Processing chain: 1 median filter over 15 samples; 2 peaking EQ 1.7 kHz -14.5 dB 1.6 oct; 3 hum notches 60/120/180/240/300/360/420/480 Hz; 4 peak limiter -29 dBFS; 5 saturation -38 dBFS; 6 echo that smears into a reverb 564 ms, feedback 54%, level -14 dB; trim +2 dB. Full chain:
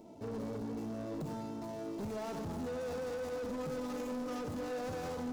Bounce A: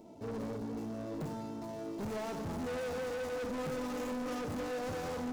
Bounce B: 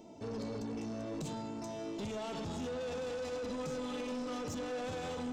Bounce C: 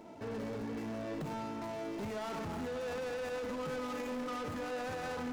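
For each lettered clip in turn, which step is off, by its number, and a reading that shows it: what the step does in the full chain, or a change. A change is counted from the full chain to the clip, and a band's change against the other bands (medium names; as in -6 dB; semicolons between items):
4, mean gain reduction 3.5 dB; 1, 4 kHz band +6.0 dB; 2, 2 kHz band +6.0 dB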